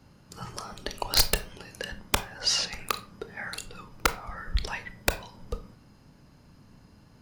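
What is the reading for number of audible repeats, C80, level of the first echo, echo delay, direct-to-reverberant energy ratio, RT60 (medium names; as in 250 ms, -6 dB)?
no echo, 20.0 dB, no echo, no echo, 10.0 dB, 0.40 s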